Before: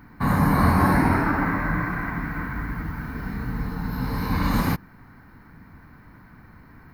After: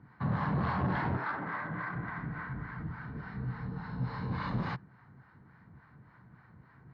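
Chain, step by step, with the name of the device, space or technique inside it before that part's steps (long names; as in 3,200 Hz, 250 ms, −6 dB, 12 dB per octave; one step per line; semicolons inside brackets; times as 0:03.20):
0:01.16–0:01.93: high-pass filter 620 Hz → 210 Hz 6 dB per octave
guitar amplifier with harmonic tremolo (two-band tremolo in antiphase 3.5 Hz, depth 70%, crossover 640 Hz; soft clipping −20 dBFS, distortion −13 dB; loudspeaker in its box 88–3,900 Hz, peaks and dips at 130 Hz +8 dB, 270 Hz −7 dB, 2,400 Hz −6 dB)
level −5.5 dB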